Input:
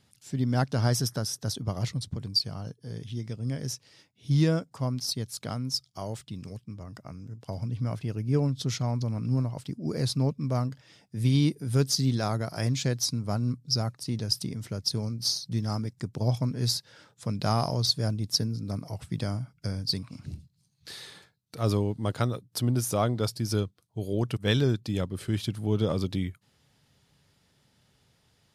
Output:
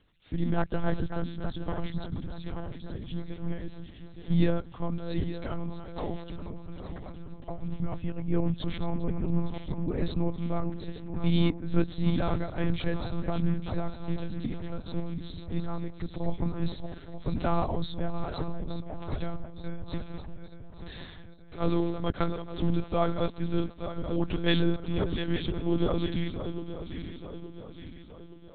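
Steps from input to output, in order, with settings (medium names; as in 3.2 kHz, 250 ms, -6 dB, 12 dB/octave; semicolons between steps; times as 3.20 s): backward echo that repeats 436 ms, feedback 69%, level -9 dB; monotone LPC vocoder at 8 kHz 170 Hz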